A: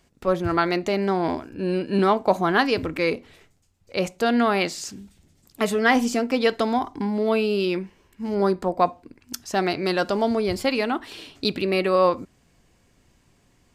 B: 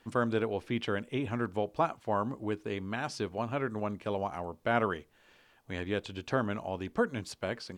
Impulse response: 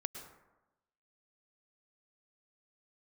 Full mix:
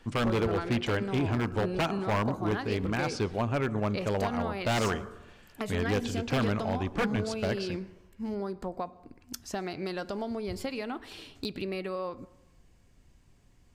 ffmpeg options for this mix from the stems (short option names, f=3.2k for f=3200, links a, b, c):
-filter_complex "[0:a]acompressor=threshold=-25dB:ratio=10,volume=-8dB,asplit=2[a][b];[b]volume=-12.5dB[c];[1:a]lowpass=8.5k,volume=1dB,asplit=2[d][e];[e]volume=-8.5dB[f];[2:a]atrim=start_sample=2205[g];[c][f]amix=inputs=2:normalize=0[h];[h][g]afir=irnorm=-1:irlink=0[i];[a][d][i]amix=inputs=3:normalize=0,lowshelf=f=100:g=12,aeval=exprs='0.0891*(abs(mod(val(0)/0.0891+3,4)-2)-1)':c=same"